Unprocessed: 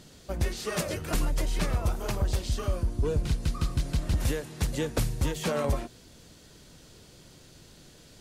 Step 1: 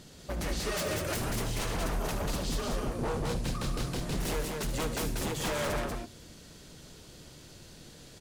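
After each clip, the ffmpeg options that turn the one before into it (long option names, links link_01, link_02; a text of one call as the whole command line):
ffmpeg -i in.wav -filter_complex "[0:a]aeval=exprs='0.0398*(abs(mod(val(0)/0.0398+3,4)-2)-1)':channel_layout=same,asplit=2[link_01][link_02];[link_02]aecho=0:1:72.89|189.5:0.282|0.708[link_03];[link_01][link_03]amix=inputs=2:normalize=0" out.wav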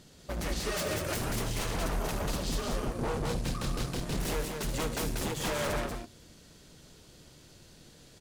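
ffmpeg -i in.wav -af "aeval=exprs='0.0794*(cos(1*acos(clip(val(0)/0.0794,-1,1)))-cos(1*PI/2))+0.00447*(cos(7*acos(clip(val(0)/0.0794,-1,1)))-cos(7*PI/2))':channel_layout=same" out.wav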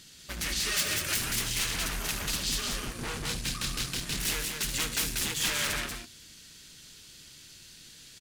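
ffmpeg -i in.wav -af "firequalizer=gain_entry='entry(270,0);entry(560,-6);entry(1600,9);entry(2700,13)':delay=0.05:min_phase=1,volume=-4.5dB" out.wav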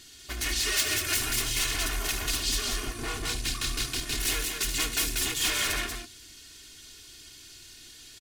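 ffmpeg -i in.wav -af "aecho=1:1:2.8:0.81" out.wav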